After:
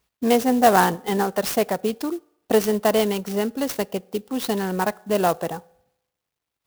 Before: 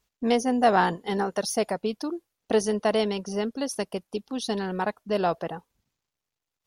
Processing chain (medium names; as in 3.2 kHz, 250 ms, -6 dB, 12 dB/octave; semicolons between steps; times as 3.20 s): high-pass 43 Hz; on a send at -22 dB: reverberation RT60 0.80 s, pre-delay 3 ms; on the sum: sampling jitter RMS 0.038 ms; trim +4.5 dB